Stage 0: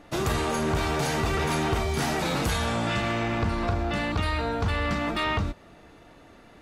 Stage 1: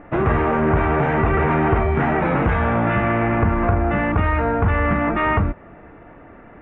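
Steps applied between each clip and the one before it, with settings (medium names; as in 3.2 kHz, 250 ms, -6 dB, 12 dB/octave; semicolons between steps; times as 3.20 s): inverse Chebyshev low-pass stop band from 4.2 kHz, stop band 40 dB; trim +8.5 dB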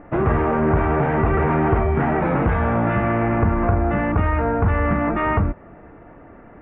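treble shelf 2.7 kHz -11.5 dB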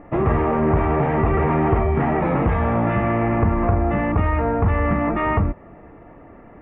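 band-stop 1.5 kHz, Q 6.3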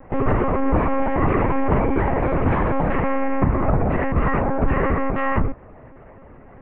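monotone LPC vocoder at 8 kHz 270 Hz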